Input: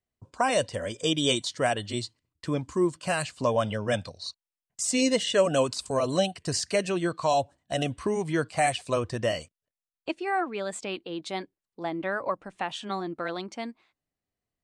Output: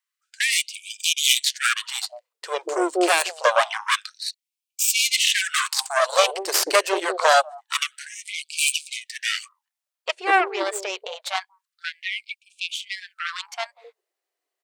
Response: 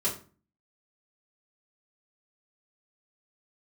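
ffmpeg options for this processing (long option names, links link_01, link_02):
-filter_complex "[0:a]acrossover=split=380[link_01][link_02];[link_01]adelay=190[link_03];[link_03][link_02]amix=inputs=2:normalize=0,aeval=exprs='0.299*(cos(1*acos(clip(val(0)/0.299,-1,1)))-cos(1*PI/2))+0.0944*(cos(6*acos(clip(val(0)/0.299,-1,1)))-cos(6*PI/2))':channel_layout=same,afftfilt=real='re*gte(b*sr/1024,300*pow(2300/300,0.5+0.5*sin(2*PI*0.26*pts/sr)))':imag='im*gte(b*sr/1024,300*pow(2300/300,0.5+0.5*sin(2*PI*0.26*pts/sr)))':win_size=1024:overlap=0.75,volume=7dB"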